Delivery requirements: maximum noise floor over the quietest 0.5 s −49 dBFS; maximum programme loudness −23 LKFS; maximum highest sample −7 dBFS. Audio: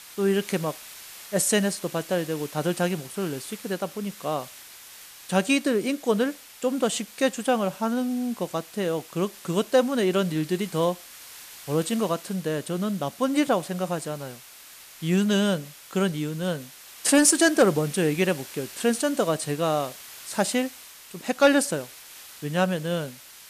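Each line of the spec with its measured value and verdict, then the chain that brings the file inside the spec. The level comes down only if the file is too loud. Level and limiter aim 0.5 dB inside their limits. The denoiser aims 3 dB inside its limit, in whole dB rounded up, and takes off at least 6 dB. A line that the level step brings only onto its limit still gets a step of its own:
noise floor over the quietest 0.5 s −47 dBFS: out of spec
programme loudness −25.5 LKFS: in spec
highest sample −8.5 dBFS: in spec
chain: broadband denoise 6 dB, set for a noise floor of −47 dBFS

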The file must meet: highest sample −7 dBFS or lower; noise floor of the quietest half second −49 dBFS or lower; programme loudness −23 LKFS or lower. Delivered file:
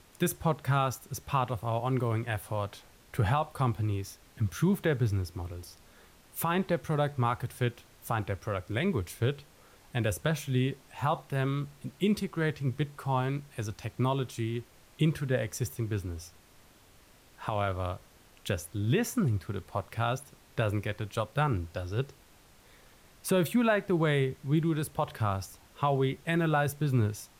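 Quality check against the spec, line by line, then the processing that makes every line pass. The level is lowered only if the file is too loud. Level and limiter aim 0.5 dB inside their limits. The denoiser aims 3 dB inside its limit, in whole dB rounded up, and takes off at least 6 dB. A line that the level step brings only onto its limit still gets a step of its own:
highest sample −15.0 dBFS: in spec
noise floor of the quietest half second −58 dBFS: in spec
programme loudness −31.0 LKFS: in spec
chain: no processing needed

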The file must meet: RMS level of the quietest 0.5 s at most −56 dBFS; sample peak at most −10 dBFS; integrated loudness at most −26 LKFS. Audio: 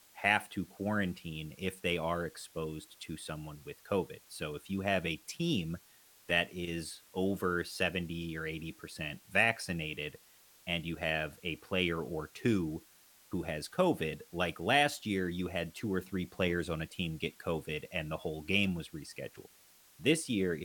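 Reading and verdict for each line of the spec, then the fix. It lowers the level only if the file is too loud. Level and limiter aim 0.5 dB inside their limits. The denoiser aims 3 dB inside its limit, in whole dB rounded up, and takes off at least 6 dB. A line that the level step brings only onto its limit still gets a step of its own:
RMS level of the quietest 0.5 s −62 dBFS: in spec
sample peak −12.0 dBFS: in spec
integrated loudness −34.5 LKFS: in spec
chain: no processing needed

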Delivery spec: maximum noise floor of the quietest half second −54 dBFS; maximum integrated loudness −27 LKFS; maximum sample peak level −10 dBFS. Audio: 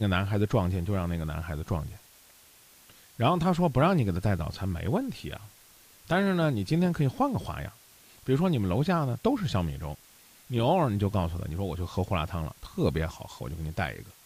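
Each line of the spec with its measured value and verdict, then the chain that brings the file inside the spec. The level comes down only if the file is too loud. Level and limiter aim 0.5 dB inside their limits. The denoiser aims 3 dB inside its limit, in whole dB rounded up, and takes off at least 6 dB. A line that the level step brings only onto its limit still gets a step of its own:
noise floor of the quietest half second −56 dBFS: in spec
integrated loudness −28.5 LKFS: in spec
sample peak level −11.0 dBFS: in spec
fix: no processing needed

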